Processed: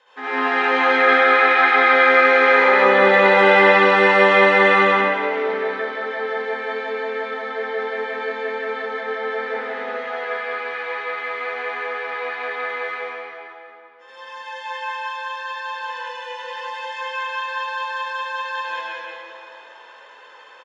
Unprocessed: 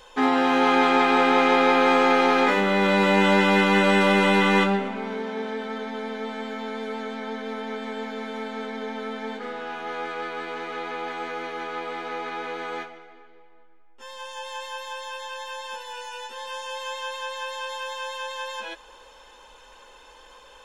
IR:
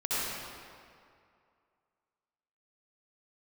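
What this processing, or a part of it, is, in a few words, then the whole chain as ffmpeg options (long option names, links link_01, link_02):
station announcement: -filter_complex "[0:a]asettb=1/sr,asplit=3[link_01][link_02][link_03];[link_01]atrim=end=1.244[link_04];[link_02]atrim=start=1.24:end=1.76,asetpts=PTS-STARTPTS,afade=type=in:duration=0.004:curve=qsin,afade=type=out:start_time=0.516:duration=0.004:curve=qsin,lowpass=7900[link_05];[link_03]atrim=start=1.756[link_06];[link_04][link_05]acrossfade=duration=0.004:curve1=hsin:curve2=qsin[link_07];[link_07][link_06]acrossfade=duration=0.004:curve1=qsin:curve2=hsin,highpass=400,lowpass=4100,equalizer=frequency=1800:width_type=o:width=0.49:gain=7.5,aecho=1:1:142.9|183.7:0.282|0.891,aecho=1:1:170|340|510|680|850|1020:0.237|0.138|0.0798|0.0463|0.0268|0.0156[link_08];[1:a]atrim=start_sample=2205[link_09];[link_08][link_09]afir=irnorm=-1:irlink=0,volume=-7.5dB"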